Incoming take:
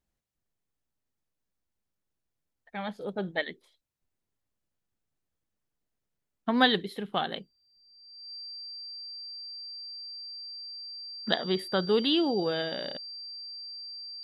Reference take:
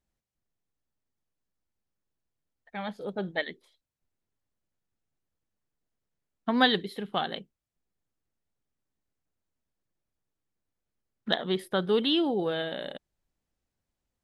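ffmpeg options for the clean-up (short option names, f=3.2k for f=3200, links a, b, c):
-af "bandreject=f=4.7k:w=30"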